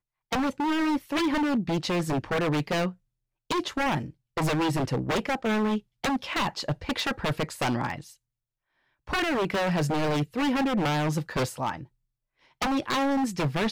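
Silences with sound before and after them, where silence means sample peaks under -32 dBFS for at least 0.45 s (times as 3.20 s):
2.90–3.51 s
8.01–9.09 s
11.83–12.62 s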